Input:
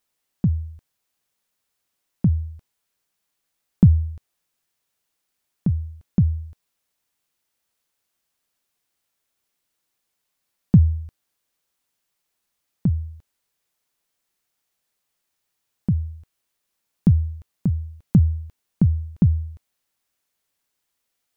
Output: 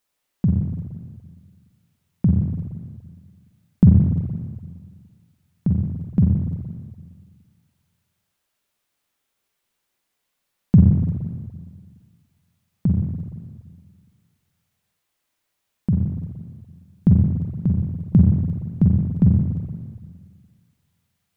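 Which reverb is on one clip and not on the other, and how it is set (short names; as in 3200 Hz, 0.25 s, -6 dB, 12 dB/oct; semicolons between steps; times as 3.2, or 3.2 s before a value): spring tank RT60 1.8 s, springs 42/47/58 ms, chirp 20 ms, DRR -1 dB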